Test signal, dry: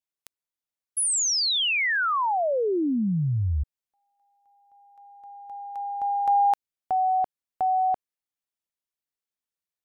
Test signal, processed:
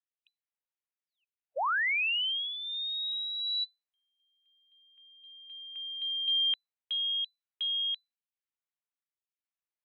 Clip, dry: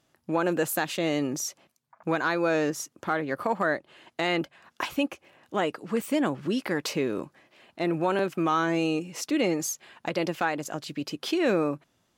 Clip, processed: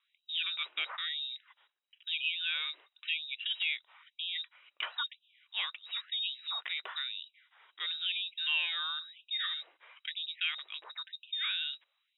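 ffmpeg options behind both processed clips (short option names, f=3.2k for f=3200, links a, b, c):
-af "equalizer=f=125:t=o:w=1:g=-7,equalizer=f=250:t=o:w=1:g=-3,equalizer=f=500:t=o:w=1:g=-10,lowpass=f=3.4k:t=q:w=0.5098,lowpass=f=3.4k:t=q:w=0.6013,lowpass=f=3.4k:t=q:w=0.9,lowpass=f=3.4k:t=q:w=2.563,afreqshift=-4000,afftfilt=real='re*gte(b*sr/1024,280*pow(2500/280,0.5+0.5*sin(2*PI*1*pts/sr)))':imag='im*gte(b*sr/1024,280*pow(2500/280,0.5+0.5*sin(2*PI*1*pts/sr)))':win_size=1024:overlap=0.75,volume=-4dB"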